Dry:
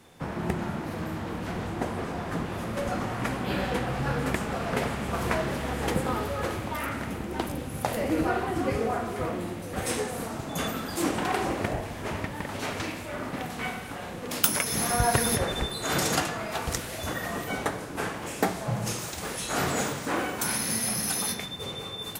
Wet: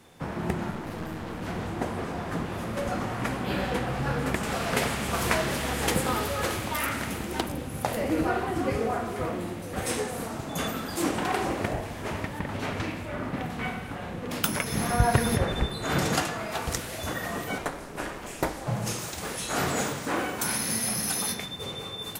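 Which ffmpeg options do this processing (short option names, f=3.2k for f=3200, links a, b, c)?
-filter_complex "[0:a]asettb=1/sr,asplit=3[a][b][c];[a]atrim=end=0.714[d];[b]atrim=start=0.71:end=1.42,asetpts=PTS-STARTPTS,afade=t=in:d=0.004:c=qsin,afade=t=out:st=0.706:d=0.004:c=qsin,aeval=exprs='clip(val(0),-1,0.0126)':c=same[e];[c]atrim=start=1.416[f];[d][e]acrossfade=d=0.004:c1=hsin:c2=qsin[g];[g][f]acrossfade=d=0.004:c1=qsin:c2=hsin,asettb=1/sr,asplit=3[h][i][j];[h]atrim=end=4.434[k];[i]atrim=start=4.43:end=7.41,asetpts=PTS-STARTPTS,afade=t=in:d=0.004:c=qsin,afade=t=out:st=2.976:d=0.004:c=qsin,highshelf=f=2.2k:g=9.5[l];[j]atrim=start=7.406[m];[k][l]acrossfade=d=0.004:c1=hsin:c2=qsin[n];[n][m]acrossfade=d=0.004:c1=qsin:c2=hsin,asettb=1/sr,asplit=3[o][p][q];[o]atrim=end=12.394[r];[p]atrim=start=12.39:end=16.15,asetpts=PTS-STARTPTS,afade=t=in:d=0.004:c=qsin,afade=t=out:st=3.756:d=0.004:c=qsin,bass=f=250:g=5,treble=f=4k:g=-7[s];[q]atrim=start=16.146[t];[r][s]acrossfade=d=0.004:c1=hsin:c2=qsin[u];[u][t]acrossfade=d=0.004:c1=qsin:c2=hsin,asettb=1/sr,asplit=3[v][w][x];[v]atrim=end=17.584[y];[w]atrim=start=17.58:end=18.67,asetpts=PTS-STARTPTS,afade=t=in:d=0.004:c=qsin,afade=t=out:st=1.086:d=0.004:c=qsin,aeval=exprs='val(0)*sin(2*PI*130*n/s)':c=same[z];[x]atrim=start=18.666[aa];[y][z]acrossfade=d=0.004:c1=hsin:c2=qsin[ab];[ab][aa]acrossfade=d=0.004:c1=qsin:c2=hsin"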